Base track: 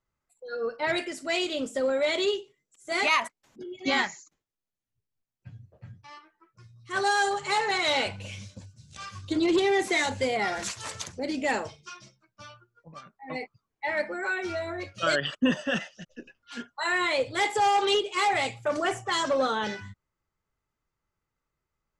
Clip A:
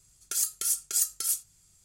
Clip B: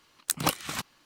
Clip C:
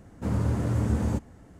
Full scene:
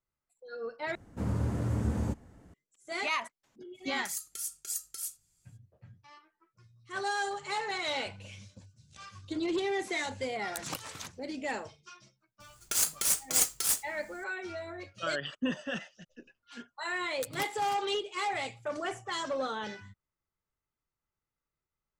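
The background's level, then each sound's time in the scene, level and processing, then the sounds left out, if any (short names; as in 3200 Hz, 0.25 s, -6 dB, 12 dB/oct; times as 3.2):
base track -8 dB
0.95 replace with C -5 dB
3.74 add A -10 dB, fades 0.02 s
10.26 add B -13 dB
12.4 add A -2.5 dB + half-waves squared off
16.93 add B -14.5 dB + comb 7.2 ms, depth 64%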